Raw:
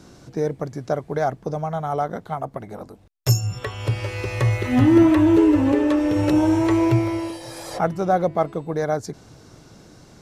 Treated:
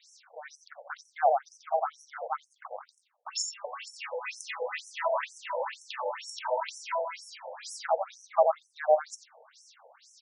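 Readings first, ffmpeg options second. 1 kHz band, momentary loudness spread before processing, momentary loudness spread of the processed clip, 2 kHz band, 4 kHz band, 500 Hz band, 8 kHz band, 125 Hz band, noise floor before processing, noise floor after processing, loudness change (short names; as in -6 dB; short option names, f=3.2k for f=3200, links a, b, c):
-4.0 dB, 16 LU, 18 LU, -6.5 dB, -5.0 dB, -7.5 dB, -3.5 dB, under -40 dB, -49 dBFS, -70 dBFS, -11.0 dB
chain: -af "aecho=1:1:88|176|264:0.668|0.127|0.0241,afftfilt=real='re*between(b*sr/1024,640*pow(7700/640,0.5+0.5*sin(2*PI*2.1*pts/sr))/1.41,640*pow(7700/640,0.5+0.5*sin(2*PI*2.1*pts/sr))*1.41)':imag='im*between(b*sr/1024,640*pow(7700/640,0.5+0.5*sin(2*PI*2.1*pts/sr))/1.41,640*pow(7700/640,0.5+0.5*sin(2*PI*2.1*pts/sr))*1.41)':win_size=1024:overlap=0.75"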